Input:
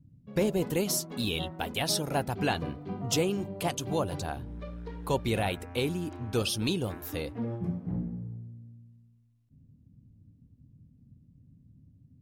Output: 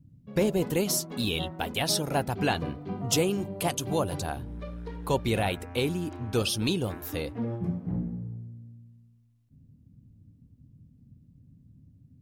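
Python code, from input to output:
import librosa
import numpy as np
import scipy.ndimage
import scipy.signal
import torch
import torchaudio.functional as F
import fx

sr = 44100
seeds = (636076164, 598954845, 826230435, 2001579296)

y = fx.peak_eq(x, sr, hz=11000.0, db=5.5, octaves=0.81, at=(2.95, 4.97))
y = F.gain(torch.from_numpy(y), 2.0).numpy()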